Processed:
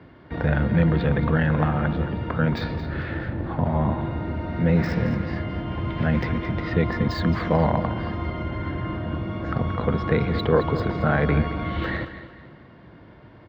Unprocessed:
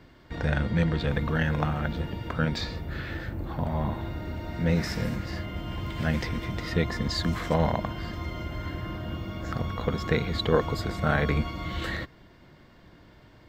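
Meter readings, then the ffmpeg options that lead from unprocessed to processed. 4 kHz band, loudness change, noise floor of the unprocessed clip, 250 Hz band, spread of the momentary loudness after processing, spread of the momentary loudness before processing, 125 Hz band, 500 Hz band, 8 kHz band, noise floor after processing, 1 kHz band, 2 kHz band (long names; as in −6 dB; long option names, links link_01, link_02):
−3.5 dB, +5.0 dB, −54 dBFS, +6.0 dB, 8 LU, 9 LU, +5.5 dB, +5.0 dB, below −10 dB, −48 dBFS, +5.0 dB, +3.0 dB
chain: -filter_complex "[0:a]highpass=71,asplit=2[link_01][link_02];[link_02]alimiter=limit=-19.5dB:level=0:latency=1:release=15,volume=1dB[link_03];[link_01][link_03]amix=inputs=2:normalize=0,aemphasis=mode=reproduction:type=50fm,acrossover=split=120|6300[link_04][link_05][link_06];[link_06]acrusher=bits=6:mix=0:aa=0.000001[link_07];[link_04][link_05][link_07]amix=inputs=3:normalize=0,equalizer=frequency=11000:width=0.34:gain=-12.5,aecho=1:1:222|444|666|888:0.251|0.0929|0.0344|0.0127"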